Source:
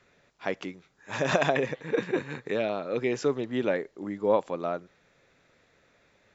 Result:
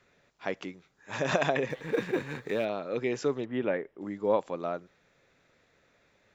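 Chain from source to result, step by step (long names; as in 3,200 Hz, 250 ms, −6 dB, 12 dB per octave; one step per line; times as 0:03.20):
0:01.70–0:02.65: mu-law and A-law mismatch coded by mu
0:03.45–0:04.01: Savitzky-Golay smoothing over 25 samples
level −2.5 dB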